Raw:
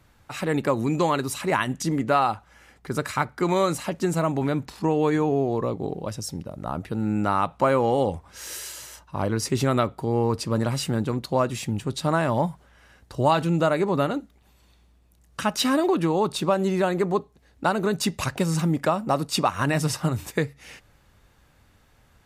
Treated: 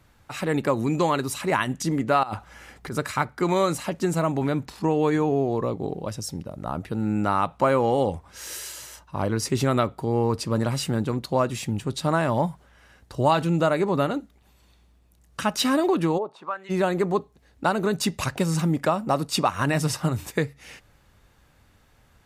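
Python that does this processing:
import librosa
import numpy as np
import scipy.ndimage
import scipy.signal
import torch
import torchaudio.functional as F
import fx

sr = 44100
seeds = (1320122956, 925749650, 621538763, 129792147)

y = fx.over_compress(x, sr, threshold_db=-32.0, ratio=-1.0, at=(2.23, 2.93))
y = fx.bandpass_q(y, sr, hz=fx.line((16.17, 470.0), (16.69, 2300.0)), q=2.8, at=(16.17, 16.69), fade=0.02)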